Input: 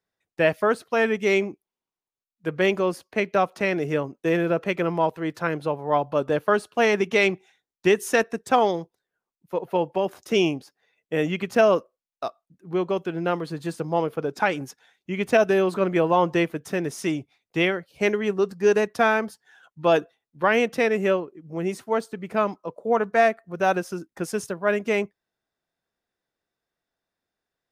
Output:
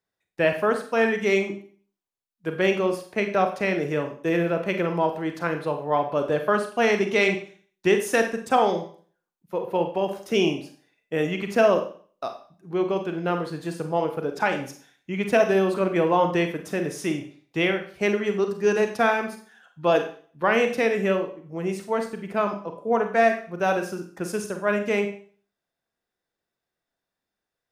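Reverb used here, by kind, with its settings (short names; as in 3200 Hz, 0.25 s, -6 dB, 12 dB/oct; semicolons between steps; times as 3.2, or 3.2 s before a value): Schroeder reverb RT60 0.45 s, combs from 31 ms, DRR 5.5 dB; gain -1.5 dB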